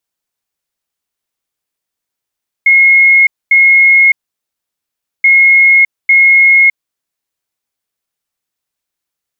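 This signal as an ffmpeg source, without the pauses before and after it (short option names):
-f lavfi -i "aevalsrc='0.708*sin(2*PI*2160*t)*clip(min(mod(mod(t,2.58),0.85),0.61-mod(mod(t,2.58),0.85))/0.005,0,1)*lt(mod(t,2.58),1.7)':d=5.16:s=44100"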